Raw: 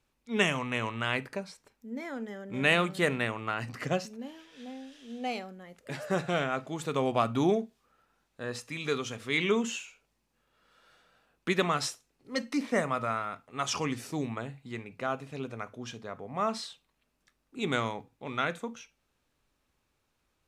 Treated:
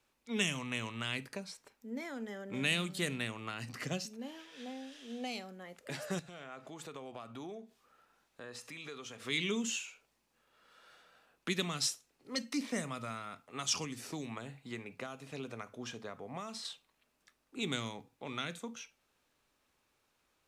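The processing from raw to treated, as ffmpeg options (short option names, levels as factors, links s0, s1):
-filter_complex "[0:a]asettb=1/sr,asplit=3[s0][s1][s2];[s0]atrim=end=6.194[s3];[s1]atrim=start=6.19:end=9.25,asetpts=PTS-STARTPTS,afade=t=in:d=0.004:c=qsin,afade=t=out:st=3.056:d=0.004:c=qsin,acompressor=threshold=0.00447:ratio=3:attack=3.2:release=140:knee=1:detection=peak[s4];[s2]atrim=start=9.246[s5];[s3][s4]acrossfade=d=0.004:c1=hsin:c2=qsin[s6];[s6][s5]acrossfade=d=0.004:c1=qsin:c2=hsin,asettb=1/sr,asplit=3[s7][s8][s9];[s7]atrim=end=13.844[s10];[s8]atrim=start=13.84:end=16.65,asetpts=PTS-STARTPTS,afade=t=in:d=0.004:c=qsin,afade=t=out:st=2.806:d=0.004:c=qsin,acrossover=split=2100|5900[s11][s12][s13];[s11]acompressor=threshold=0.02:ratio=4[s14];[s12]acompressor=threshold=0.00316:ratio=4[s15];[s13]acompressor=threshold=0.00224:ratio=4[s16];[s14][s15][s16]amix=inputs=3:normalize=0[s17];[s9]atrim=start=16.646[s18];[s10][s17]acrossfade=d=0.004:c1=hsin:c2=qsin[s19];[s19][s18]acrossfade=d=0.004:c1=qsin:c2=hsin,lowshelf=f=190:g=-11,acrossover=split=270|3000[s20][s21][s22];[s21]acompressor=threshold=0.00562:ratio=5[s23];[s20][s23][s22]amix=inputs=3:normalize=0,volume=1.26"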